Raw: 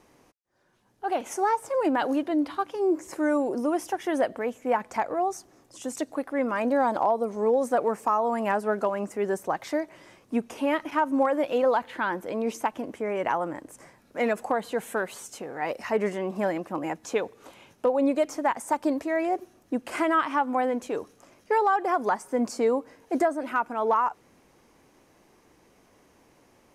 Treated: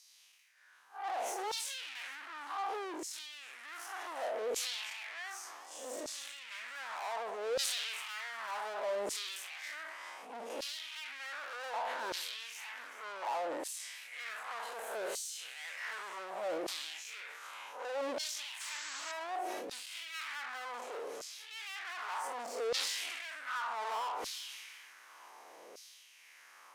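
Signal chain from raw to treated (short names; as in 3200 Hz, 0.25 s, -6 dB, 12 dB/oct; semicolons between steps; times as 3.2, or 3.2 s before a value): time blur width 0.118 s; tube stage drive 40 dB, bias 0.25; limiter -44.5 dBFS, peak gain reduction 7.5 dB; thin delay 0.392 s, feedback 65%, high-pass 1500 Hz, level -14 dB; LFO high-pass saw down 0.66 Hz 450–4800 Hz; painted sound noise, 18.6–19.12, 980–8100 Hz -51 dBFS; sustainer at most 24 dB/s; gain +6 dB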